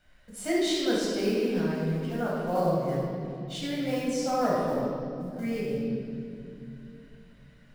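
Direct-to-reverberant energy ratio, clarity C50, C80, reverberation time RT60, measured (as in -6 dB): -6.0 dB, -2.0 dB, 0.5 dB, 2.7 s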